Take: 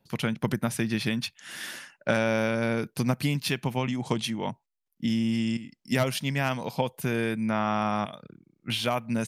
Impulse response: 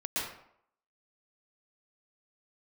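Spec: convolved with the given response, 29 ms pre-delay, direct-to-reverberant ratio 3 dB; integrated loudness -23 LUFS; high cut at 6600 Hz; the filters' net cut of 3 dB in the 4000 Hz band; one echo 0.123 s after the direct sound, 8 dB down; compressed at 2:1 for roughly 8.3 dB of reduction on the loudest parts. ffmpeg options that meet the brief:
-filter_complex "[0:a]lowpass=6.6k,equalizer=f=4k:t=o:g=-3.5,acompressor=threshold=-36dB:ratio=2,aecho=1:1:123:0.398,asplit=2[a][b];[1:a]atrim=start_sample=2205,adelay=29[c];[b][c]afir=irnorm=-1:irlink=0,volume=-9dB[d];[a][d]amix=inputs=2:normalize=0,volume=11dB"

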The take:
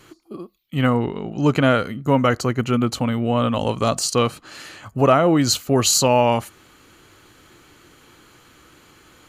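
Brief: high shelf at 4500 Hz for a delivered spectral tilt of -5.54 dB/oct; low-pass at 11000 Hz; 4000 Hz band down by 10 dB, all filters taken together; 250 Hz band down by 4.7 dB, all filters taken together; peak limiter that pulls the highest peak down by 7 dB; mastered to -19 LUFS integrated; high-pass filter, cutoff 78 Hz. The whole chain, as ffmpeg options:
-af "highpass=78,lowpass=11k,equalizer=f=250:t=o:g=-5.5,equalizer=f=4k:t=o:g=-8.5,highshelf=f=4.5k:g=-8,volume=5.5dB,alimiter=limit=-6.5dB:level=0:latency=1"

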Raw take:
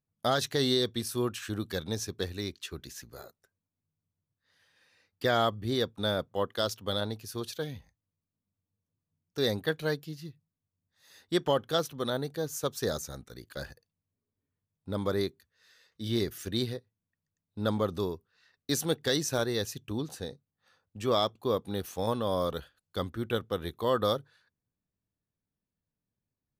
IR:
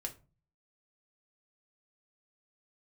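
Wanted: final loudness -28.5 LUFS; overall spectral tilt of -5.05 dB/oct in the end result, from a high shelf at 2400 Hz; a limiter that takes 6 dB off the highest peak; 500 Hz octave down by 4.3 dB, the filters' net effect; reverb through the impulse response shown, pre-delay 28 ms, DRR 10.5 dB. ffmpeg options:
-filter_complex "[0:a]equalizer=f=500:t=o:g=-5,highshelf=f=2.4k:g=-5,alimiter=limit=-24dB:level=0:latency=1,asplit=2[a][b];[1:a]atrim=start_sample=2205,adelay=28[c];[b][c]afir=irnorm=-1:irlink=0,volume=-9.5dB[d];[a][d]amix=inputs=2:normalize=0,volume=8.5dB"

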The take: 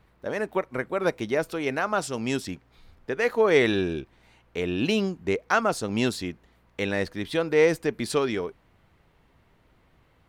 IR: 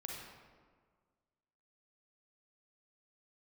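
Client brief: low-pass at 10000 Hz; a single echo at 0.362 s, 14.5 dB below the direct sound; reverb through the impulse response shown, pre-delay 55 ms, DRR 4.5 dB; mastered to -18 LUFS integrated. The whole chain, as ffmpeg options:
-filter_complex "[0:a]lowpass=10k,aecho=1:1:362:0.188,asplit=2[a][b];[1:a]atrim=start_sample=2205,adelay=55[c];[b][c]afir=irnorm=-1:irlink=0,volume=-3dB[d];[a][d]amix=inputs=2:normalize=0,volume=7dB"

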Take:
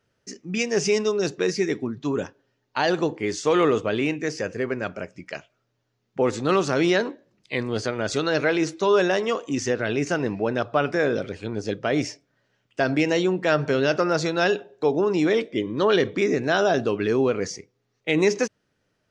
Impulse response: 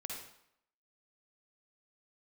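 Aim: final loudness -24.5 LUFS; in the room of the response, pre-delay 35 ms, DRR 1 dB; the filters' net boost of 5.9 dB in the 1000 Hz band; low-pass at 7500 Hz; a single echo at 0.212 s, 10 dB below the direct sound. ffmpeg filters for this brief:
-filter_complex "[0:a]lowpass=7.5k,equalizer=f=1k:t=o:g=8,aecho=1:1:212:0.316,asplit=2[a][b];[1:a]atrim=start_sample=2205,adelay=35[c];[b][c]afir=irnorm=-1:irlink=0,volume=0dB[d];[a][d]amix=inputs=2:normalize=0,volume=-5.5dB"

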